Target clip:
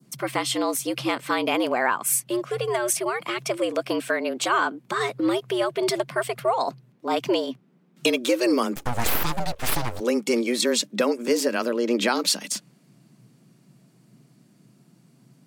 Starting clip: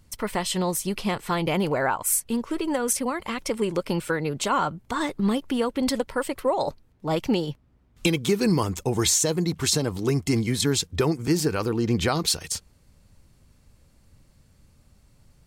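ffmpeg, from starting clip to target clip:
ffmpeg -i in.wav -filter_complex "[0:a]afreqshift=120,adynamicequalizer=threshold=0.0112:dfrequency=2400:dqfactor=0.83:tfrequency=2400:tqfactor=0.83:attack=5:release=100:ratio=0.375:range=2:mode=boostabove:tftype=bell,asplit=3[link_01][link_02][link_03];[link_01]afade=type=out:start_time=8.75:duration=0.02[link_04];[link_02]aeval=exprs='abs(val(0))':channel_layout=same,afade=type=in:start_time=8.75:duration=0.02,afade=type=out:start_time=9.99:duration=0.02[link_05];[link_03]afade=type=in:start_time=9.99:duration=0.02[link_06];[link_04][link_05][link_06]amix=inputs=3:normalize=0" out.wav

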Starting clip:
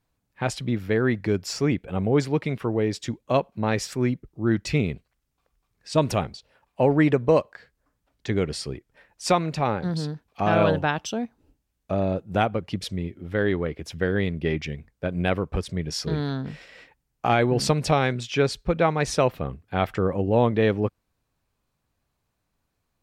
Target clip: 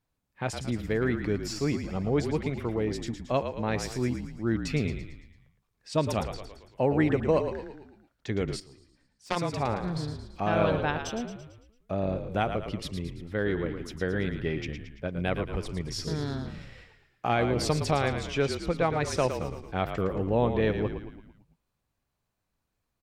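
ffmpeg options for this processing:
ffmpeg -i in.wav -filter_complex "[0:a]asplit=7[link_01][link_02][link_03][link_04][link_05][link_06][link_07];[link_02]adelay=112,afreqshift=-45,volume=-8dB[link_08];[link_03]adelay=224,afreqshift=-90,volume=-13.8dB[link_09];[link_04]adelay=336,afreqshift=-135,volume=-19.7dB[link_10];[link_05]adelay=448,afreqshift=-180,volume=-25.5dB[link_11];[link_06]adelay=560,afreqshift=-225,volume=-31.4dB[link_12];[link_07]adelay=672,afreqshift=-270,volume=-37.2dB[link_13];[link_01][link_08][link_09][link_10][link_11][link_12][link_13]amix=inputs=7:normalize=0,asplit=3[link_14][link_15][link_16];[link_14]afade=type=out:start_time=8.59:duration=0.02[link_17];[link_15]aeval=exprs='0.422*(cos(1*acos(clip(val(0)/0.422,-1,1)))-cos(1*PI/2))+0.168*(cos(3*acos(clip(val(0)/0.422,-1,1)))-cos(3*PI/2))':channel_layout=same,afade=type=in:start_time=8.59:duration=0.02,afade=type=out:start_time=9.35:duration=0.02[link_18];[link_16]afade=type=in:start_time=9.35:duration=0.02[link_19];[link_17][link_18][link_19]amix=inputs=3:normalize=0,volume=-5.5dB" out.wav

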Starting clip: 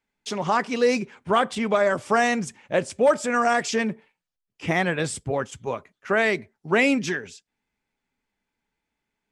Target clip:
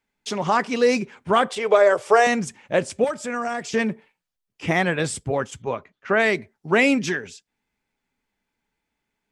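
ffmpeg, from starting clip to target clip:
ffmpeg -i in.wav -filter_complex "[0:a]asettb=1/sr,asplit=3[link_01][link_02][link_03];[link_01]atrim=end=1.484[link_04];[link_02]atrim=start=1.48:end=2.27,asetpts=PTS-STARTPTS,afade=type=in:duration=0.004:curve=qsin,afade=type=out:start_time=0.786:duration=0.004:curve=qsin,lowshelf=frequency=330:width_type=q:width=3:gain=-9[link_05];[link_03]atrim=start=2.266[link_06];[link_04][link_05]acrossfade=duration=0.004:curve1=hsin:curve2=qsin[link_07];[link_07][link_06]acrossfade=duration=0.004:curve1=qsin:curve2=hsin,asettb=1/sr,asplit=3[link_08][link_09][link_10];[link_08]atrim=end=3.044[link_11];[link_09]atrim=start=3.04:end=3.74,asetpts=PTS-STARTPTS,afade=type=in:duration=0.004:curve=qsin,afade=type=out:start_time=0.696:duration=0.004:curve=qsin,acrossover=split=210|1100[link_12][link_13][link_14];[link_12]acompressor=threshold=-42dB:ratio=4[link_15];[link_13]acompressor=threshold=-30dB:ratio=4[link_16];[link_14]acompressor=threshold=-35dB:ratio=4[link_17];[link_15][link_16][link_17]amix=inputs=3:normalize=0[link_18];[link_10]atrim=start=3.736[link_19];[link_11][link_18]acrossfade=duration=0.004:curve1=hsin:curve2=qsin[link_20];[link_20][link_19]acrossfade=duration=0.004:curve1=qsin:curve2=hsin,asettb=1/sr,asplit=3[link_21][link_22][link_23];[link_21]atrim=end=5.624[link_24];[link_22]atrim=start=5.62:end=6.2,asetpts=PTS-STARTPTS,afade=type=in:duration=0.004:curve=qsin,afade=type=out:start_time=0.576:duration=0.004:curve=qsin,lowpass=4400[link_25];[link_23]atrim=start=6.196[link_26];[link_24][link_25]acrossfade=duration=0.004:curve1=hsin:curve2=qsin[link_27];[link_27][link_26]acrossfade=duration=0.004:curve1=qsin:curve2=hsin,volume=2dB" out.wav

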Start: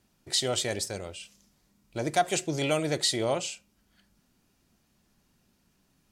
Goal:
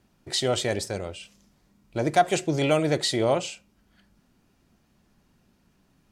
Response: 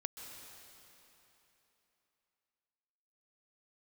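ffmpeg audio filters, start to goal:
-af "highshelf=frequency=3400:gain=-9,volume=5.5dB"

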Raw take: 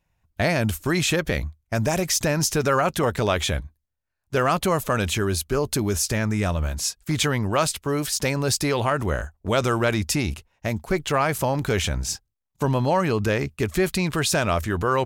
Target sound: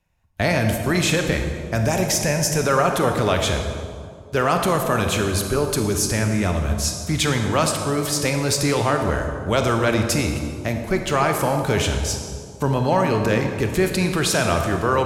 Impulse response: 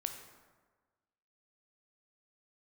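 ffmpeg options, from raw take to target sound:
-filter_complex "[0:a]asettb=1/sr,asplit=3[link_01][link_02][link_03];[link_01]atrim=end=2.124[link_04];[link_02]atrim=start=2.12:end=2.59,asetpts=PTS-STARTPTS,afade=type=in:duration=0.004:curve=qsin,afade=type=out:start_time=0.466:duration=0.004:curve=qsin,equalizer=frequency=315:width_type=o:width=0.33:gain=-10,equalizer=frequency=1250:width_type=o:width=0.33:gain=-10,equalizer=frequency=2000:width_type=o:width=0.33:gain=3,equalizer=frequency=4000:width_type=o:width=0.33:gain=-9[link_05];[link_03]atrim=start=2.586[link_06];[link_04][link_05]acrossfade=duration=0.004:curve1=hsin:curve2=qsin[link_07];[link_07][link_06]acrossfade=duration=0.004:curve1=qsin:curve2=hsin,acrossover=split=360|1200|2600[link_08][link_09][link_10][link_11];[link_09]aeval=exprs='clip(val(0),-1,0.133)':channel_layout=same[link_12];[link_08][link_12][link_10][link_11]amix=inputs=4:normalize=0[link_13];[1:a]atrim=start_sample=2205,asetrate=26019,aresample=44100[link_14];[link_13][link_14]afir=irnorm=-1:irlink=0"

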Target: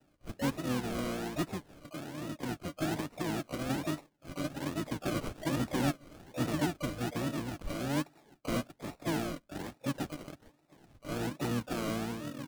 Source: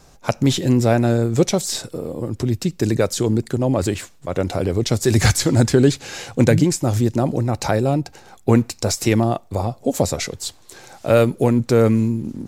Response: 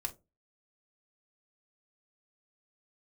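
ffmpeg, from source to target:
-filter_complex "[0:a]asplit=3[link_01][link_02][link_03];[link_01]bandpass=frequency=300:width_type=q:width=8,volume=0dB[link_04];[link_02]bandpass=frequency=870:width_type=q:width=8,volume=-6dB[link_05];[link_03]bandpass=frequency=2240:width_type=q:width=8,volume=-9dB[link_06];[link_04][link_05][link_06]amix=inputs=3:normalize=0,acrusher=samples=39:mix=1:aa=0.000001:lfo=1:lforange=23.4:lforate=1.2,asoftclip=type=tanh:threshold=-23dB,asplit=4[link_07][link_08][link_09][link_10];[link_08]asetrate=22050,aresample=44100,atempo=2,volume=-4dB[link_11];[link_09]asetrate=37084,aresample=44100,atempo=1.18921,volume=-11dB[link_12];[link_10]asetrate=88200,aresample=44100,atempo=0.5,volume=-8dB[link_13];[link_07][link_11][link_12][link_13]amix=inputs=4:normalize=0,volume=-5dB"

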